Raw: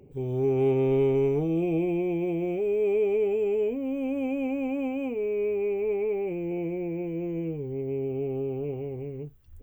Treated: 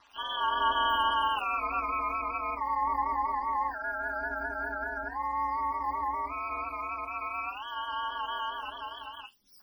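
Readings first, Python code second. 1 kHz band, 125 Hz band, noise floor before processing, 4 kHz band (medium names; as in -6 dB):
+16.0 dB, under -20 dB, -44 dBFS, no reading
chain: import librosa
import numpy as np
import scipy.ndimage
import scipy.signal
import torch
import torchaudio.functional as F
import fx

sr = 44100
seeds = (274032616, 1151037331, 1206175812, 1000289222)

y = fx.octave_mirror(x, sr, pivot_hz=640.0)
y = y * np.sin(2.0 * np.pi * 110.0 * np.arange(len(y)) / sr)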